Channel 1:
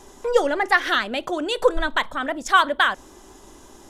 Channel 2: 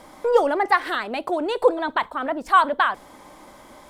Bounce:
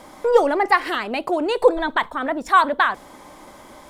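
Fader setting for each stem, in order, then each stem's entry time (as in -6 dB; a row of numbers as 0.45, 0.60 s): -11.0, +2.5 dB; 0.00, 0.00 s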